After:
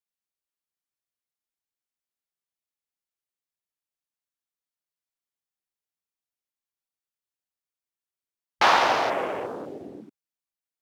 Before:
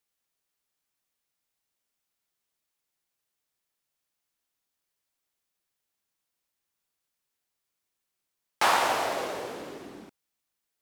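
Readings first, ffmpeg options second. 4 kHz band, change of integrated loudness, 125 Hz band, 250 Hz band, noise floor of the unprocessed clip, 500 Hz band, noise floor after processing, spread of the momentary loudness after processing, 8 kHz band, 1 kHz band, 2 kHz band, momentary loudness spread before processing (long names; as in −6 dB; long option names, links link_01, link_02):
+3.5 dB, +4.5 dB, +4.0 dB, +4.5 dB, −84 dBFS, +4.5 dB, below −85 dBFS, 19 LU, −3.5 dB, +4.5 dB, +4.5 dB, 20 LU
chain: -af "afwtdn=0.0112,volume=4.5dB"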